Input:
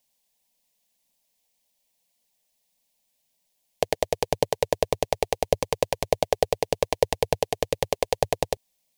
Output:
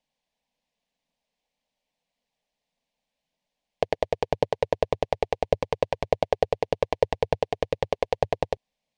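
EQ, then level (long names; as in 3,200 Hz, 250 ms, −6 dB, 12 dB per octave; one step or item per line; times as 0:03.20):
Bessel low-pass filter 2,600 Hz, order 2
0.0 dB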